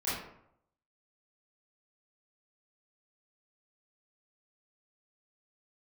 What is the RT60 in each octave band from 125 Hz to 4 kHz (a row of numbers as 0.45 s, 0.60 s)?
0.80 s, 0.75 s, 0.75 s, 0.75 s, 0.55 s, 0.40 s